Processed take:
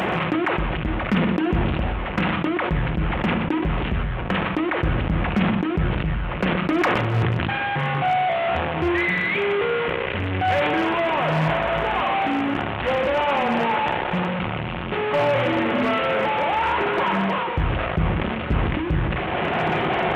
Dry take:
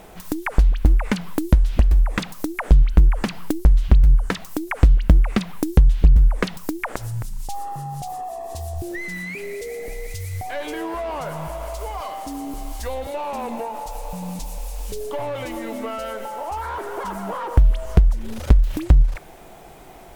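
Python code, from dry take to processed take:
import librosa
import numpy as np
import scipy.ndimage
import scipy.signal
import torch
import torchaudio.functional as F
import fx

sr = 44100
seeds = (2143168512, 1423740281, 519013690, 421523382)

p1 = fx.delta_mod(x, sr, bps=16000, step_db=-21.5)
p2 = fx.room_shoebox(p1, sr, seeds[0], volume_m3=560.0, walls='furnished', distance_m=0.97)
p3 = fx.rider(p2, sr, range_db=5, speed_s=0.5)
p4 = scipy.signal.sosfilt(scipy.signal.butter(4, 77.0, 'highpass', fs=sr, output='sos'), p3)
p5 = p4 + fx.echo_single(p4, sr, ms=124, db=-14.0, dry=0)
p6 = np.clip(p5, -10.0 ** (-14.5 / 20.0), 10.0 ** (-14.5 / 20.0))
y = fx.sustainer(p6, sr, db_per_s=22.0)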